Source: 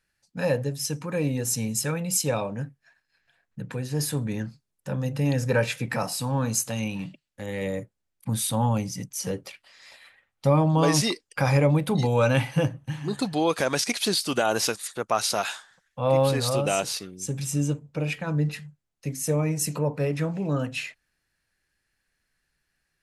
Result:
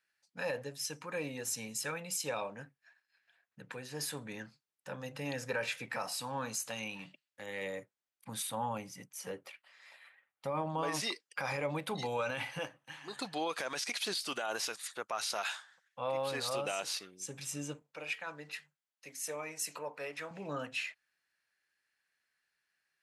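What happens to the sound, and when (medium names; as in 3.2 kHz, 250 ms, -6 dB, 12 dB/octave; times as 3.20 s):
8.42–11.00 s: peaking EQ 5.1 kHz -8 dB 1.5 oct
12.59–13.16 s: high-pass 430 Hz 6 dB/octave
17.82–20.31 s: high-pass 680 Hz 6 dB/octave
whole clip: high-pass 1.5 kHz 6 dB/octave; treble shelf 4.3 kHz -10.5 dB; peak limiter -25.5 dBFS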